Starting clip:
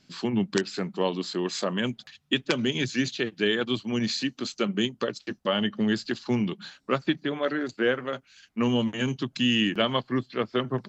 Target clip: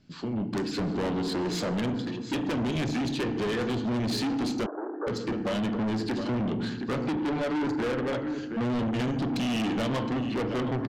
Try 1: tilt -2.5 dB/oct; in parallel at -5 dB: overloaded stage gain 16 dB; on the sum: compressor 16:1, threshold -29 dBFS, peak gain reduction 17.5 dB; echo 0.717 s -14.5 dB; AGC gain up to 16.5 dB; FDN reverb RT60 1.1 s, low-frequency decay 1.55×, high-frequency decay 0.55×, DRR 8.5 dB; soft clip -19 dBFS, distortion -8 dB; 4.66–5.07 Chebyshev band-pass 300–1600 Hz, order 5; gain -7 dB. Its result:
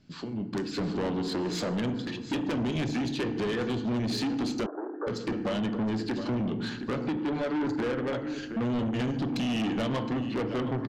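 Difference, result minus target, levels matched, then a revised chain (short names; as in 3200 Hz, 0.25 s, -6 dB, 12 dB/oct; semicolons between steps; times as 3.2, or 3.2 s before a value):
compressor: peak gain reduction +8.5 dB
tilt -2.5 dB/oct; in parallel at -5 dB: overloaded stage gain 16 dB; on the sum: compressor 16:1, threshold -20 dBFS, peak gain reduction 9 dB; echo 0.717 s -14.5 dB; AGC gain up to 16.5 dB; FDN reverb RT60 1.1 s, low-frequency decay 1.55×, high-frequency decay 0.55×, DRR 8.5 dB; soft clip -19 dBFS, distortion -6 dB; 4.66–5.07 Chebyshev band-pass 300–1600 Hz, order 5; gain -7 dB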